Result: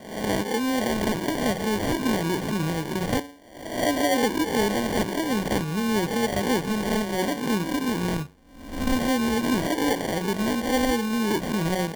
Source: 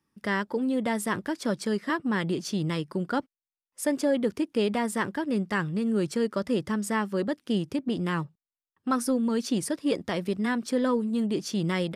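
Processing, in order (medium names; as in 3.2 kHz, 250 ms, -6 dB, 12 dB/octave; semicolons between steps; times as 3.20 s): reverse spectral sustain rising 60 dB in 0.80 s; de-hum 94.24 Hz, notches 13; sample-and-hold 34×; trim +1.5 dB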